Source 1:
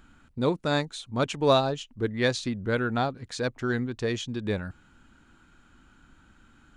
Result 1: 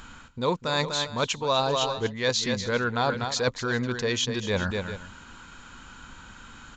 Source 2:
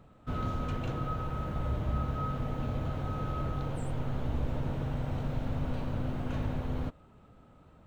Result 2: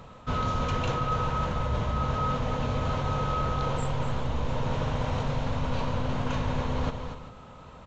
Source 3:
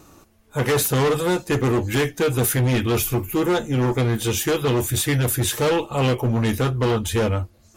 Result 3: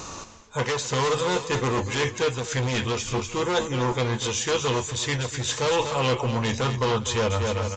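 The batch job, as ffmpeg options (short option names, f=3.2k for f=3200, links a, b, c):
-af "highshelf=f=2.1k:g=11,aecho=1:1:245|398:0.266|0.1,areverse,acompressor=threshold=-33dB:ratio=6,areverse,aresample=16000,aresample=44100,equalizer=f=315:t=o:w=0.33:g=-6,equalizer=f=500:t=o:w=0.33:g=5,equalizer=f=1k:t=o:w=0.33:g=9,volume=8.5dB"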